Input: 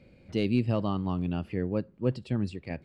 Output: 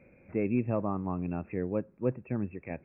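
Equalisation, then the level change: bass shelf 240 Hz -9 dB; dynamic bell 1.9 kHz, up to -5 dB, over -50 dBFS, Q 0.89; brick-wall FIR low-pass 2.7 kHz; +2.0 dB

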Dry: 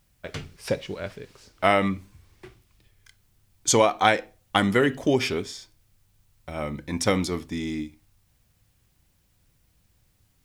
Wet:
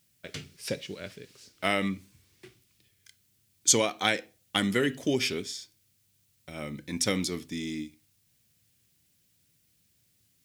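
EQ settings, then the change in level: high-pass 130 Hz 12 dB/octave; bass shelf 430 Hz -5 dB; peaking EQ 920 Hz -13.5 dB 1.9 oct; +2.0 dB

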